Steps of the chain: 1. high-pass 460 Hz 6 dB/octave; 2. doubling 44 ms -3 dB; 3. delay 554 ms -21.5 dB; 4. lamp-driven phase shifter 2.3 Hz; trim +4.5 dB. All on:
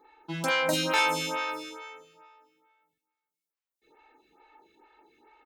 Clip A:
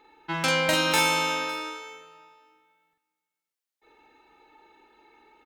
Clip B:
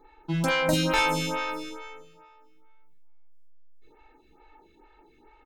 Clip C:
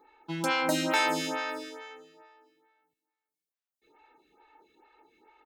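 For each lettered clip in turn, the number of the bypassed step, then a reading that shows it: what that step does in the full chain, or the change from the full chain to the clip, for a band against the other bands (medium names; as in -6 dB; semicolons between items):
4, momentary loudness spread change -1 LU; 1, 125 Hz band +9.0 dB; 2, 250 Hz band +4.5 dB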